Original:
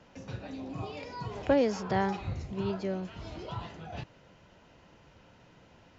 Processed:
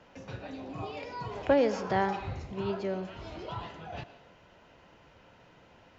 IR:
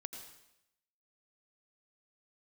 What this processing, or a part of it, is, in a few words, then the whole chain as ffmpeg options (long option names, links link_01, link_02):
filtered reverb send: -filter_complex "[0:a]asplit=2[link_01][link_02];[link_02]highpass=290,lowpass=4300[link_03];[1:a]atrim=start_sample=2205[link_04];[link_03][link_04]afir=irnorm=-1:irlink=0,volume=-0.5dB[link_05];[link_01][link_05]amix=inputs=2:normalize=0,volume=-2dB"